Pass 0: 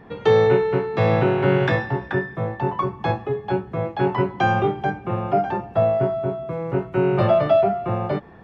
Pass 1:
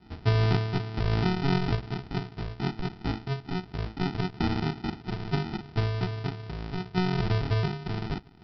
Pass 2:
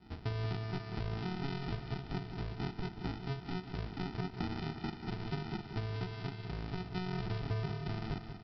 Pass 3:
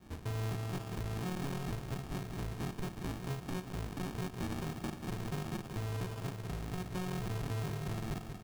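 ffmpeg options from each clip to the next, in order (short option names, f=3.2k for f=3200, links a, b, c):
-af "adynamicequalizer=threshold=0.0316:dfrequency=1200:dqfactor=0.71:tfrequency=1200:tqfactor=0.71:attack=5:release=100:ratio=0.375:range=2.5:mode=cutabove:tftype=bell,aresample=11025,acrusher=samples=20:mix=1:aa=0.000001,aresample=44100,volume=-7.5dB"
-af "acompressor=threshold=-31dB:ratio=6,aecho=1:1:187|374|561|748|935|1122|1309:0.355|0.206|0.119|0.0692|0.0402|0.0233|0.0135,volume=-4dB"
-af "acrusher=samples=22:mix=1:aa=0.000001,asoftclip=type=hard:threshold=-35dB,volume=1.5dB"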